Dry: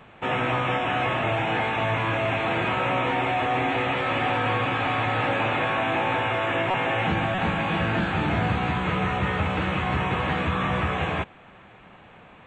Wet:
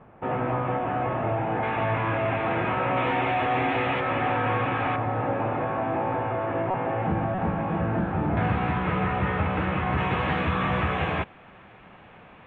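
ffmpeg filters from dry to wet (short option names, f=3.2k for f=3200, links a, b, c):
-af "asetnsamples=n=441:p=0,asendcmd='1.63 lowpass f 1900;2.97 lowpass f 3000;4 lowpass f 2000;4.96 lowpass f 1000;8.37 lowpass f 2100;9.98 lowpass f 3500',lowpass=1.1k"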